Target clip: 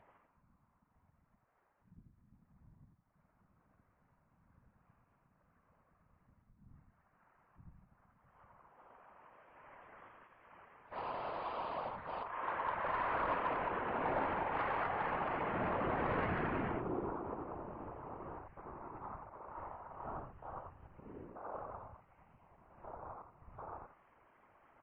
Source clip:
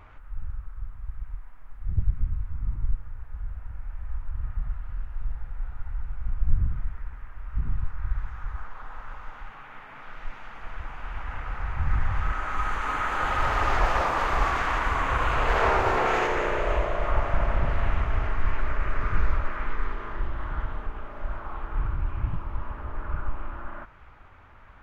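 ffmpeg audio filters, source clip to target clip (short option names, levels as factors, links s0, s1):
-filter_complex "[0:a]alimiter=limit=0.106:level=0:latency=1:release=345,afwtdn=0.0178,acompressor=threshold=0.01:ratio=2.5,asplit=2[s0][s1];[s1]aecho=0:1:88:0.668[s2];[s0][s2]amix=inputs=2:normalize=0,highpass=f=210:t=q:w=0.5412,highpass=f=210:t=q:w=1.307,lowpass=f=3200:t=q:w=0.5176,lowpass=f=3200:t=q:w=0.7071,lowpass=f=3200:t=q:w=1.932,afreqshift=-270,asettb=1/sr,asplit=3[s3][s4][s5];[s3]atrim=end=10.924[s6];[s4]atrim=start=10.92:end=12.23,asetpts=PTS-STARTPTS,afade=t=in:d=0.004:c=qsin,afade=t=out:st=1.306:d=0.004:c=qsin,asplit=2[s7][s8];[s8]highpass=f=720:p=1,volume=25.1,asoftclip=type=tanh:threshold=0.0178[s9];[s7][s9]amix=inputs=2:normalize=0,lowpass=f=1100:p=1,volume=0.501[s10];[s5]atrim=start=12.226[s11];[s6][s10]acrossfade=d=0.004:c1=hsin:c2=qsin[s12];[s12][s11]acrossfade=d=0.004:c1=qsin:c2=hsin,asettb=1/sr,asplit=3[s13][s14][s15];[s13]atrim=end=21.944[s16];[s14]atrim=start=21.94:end=22.52,asetpts=PTS-STARTPTS,afade=t=in:d=0.004:c=qsin,afade=t=out:st=0.576:d=0.004:c=qsin,aemphasis=mode=production:type=bsi[s17];[s15]atrim=start=22.516[s18];[s16][s17]acrossfade=d=0.004:c1=hsin:c2=qsin[s19];[s19][s18]acrossfade=d=0.004:c1=qsin:c2=hsin,afftfilt=real='hypot(re,im)*cos(2*PI*random(0))':imag='hypot(re,im)*sin(2*PI*random(1))':win_size=512:overlap=0.75,asoftclip=type=tanh:threshold=0.0211,volume=2.99" -ar 11025 -c:a libmp3lame -b:a 24k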